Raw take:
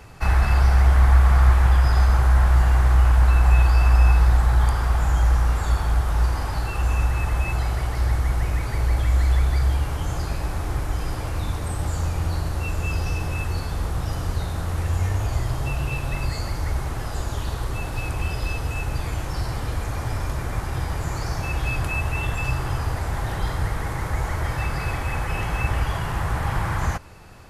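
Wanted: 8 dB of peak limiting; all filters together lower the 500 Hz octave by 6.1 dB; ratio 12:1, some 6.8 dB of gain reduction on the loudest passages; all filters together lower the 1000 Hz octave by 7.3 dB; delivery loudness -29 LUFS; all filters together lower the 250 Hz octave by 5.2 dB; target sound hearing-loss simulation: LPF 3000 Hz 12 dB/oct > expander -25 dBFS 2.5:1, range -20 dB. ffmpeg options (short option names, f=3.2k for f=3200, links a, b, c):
-af "equalizer=f=250:t=o:g=-8.5,equalizer=f=500:t=o:g=-3,equalizer=f=1k:t=o:g=-8,acompressor=threshold=-18dB:ratio=12,alimiter=limit=-19.5dB:level=0:latency=1,lowpass=3k,agate=range=-20dB:threshold=-25dB:ratio=2.5,volume=0.5dB"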